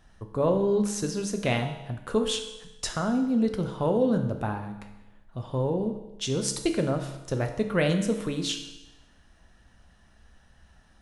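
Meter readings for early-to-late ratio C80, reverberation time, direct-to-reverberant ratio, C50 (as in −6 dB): 10.5 dB, 1.0 s, 5.0 dB, 8.5 dB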